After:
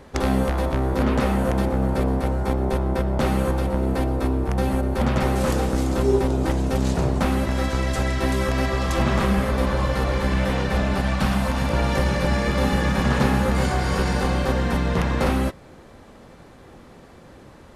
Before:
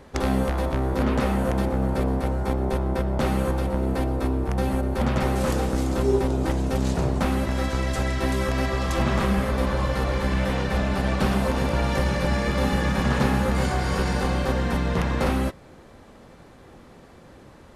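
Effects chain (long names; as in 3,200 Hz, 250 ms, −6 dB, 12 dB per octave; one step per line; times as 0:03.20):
0:11.01–0:11.70: parametric band 410 Hz −11 dB 0.66 octaves
level +2 dB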